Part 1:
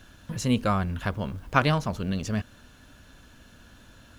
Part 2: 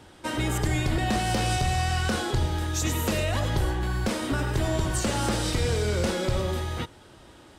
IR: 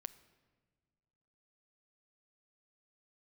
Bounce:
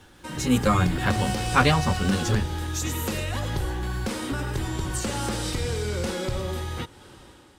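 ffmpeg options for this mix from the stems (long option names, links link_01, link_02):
-filter_complex "[0:a]tremolo=f=4.8:d=0.34,asplit=2[link_01][link_02];[link_02]adelay=10.9,afreqshift=2.8[link_03];[link_01][link_03]amix=inputs=2:normalize=1,volume=1dB[link_04];[1:a]acompressor=threshold=-40dB:ratio=1.5,volume=-4dB[link_05];[link_04][link_05]amix=inputs=2:normalize=0,highshelf=frequency=8700:gain=3.5,dynaudnorm=framelen=190:gausssize=5:maxgain=8dB,asuperstop=centerf=650:order=4:qfactor=7.6"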